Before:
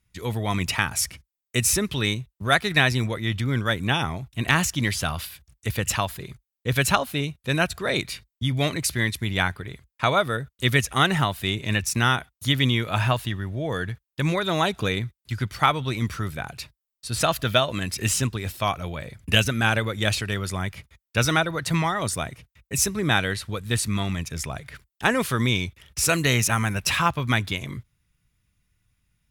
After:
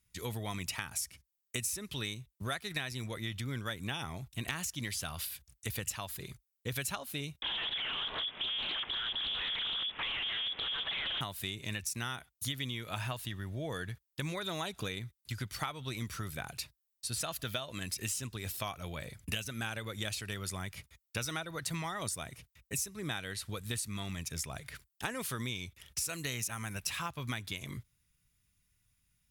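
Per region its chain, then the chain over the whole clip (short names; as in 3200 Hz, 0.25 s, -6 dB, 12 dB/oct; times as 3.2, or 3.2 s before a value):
7.42–11.21 infinite clipping + inverted band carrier 3400 Hz + Doppler distortion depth 0.32 ms
whole clip: high shelf 4000 Hz +10.5 dB; compressor, threshold -27 dBFS; gain -7.5 dB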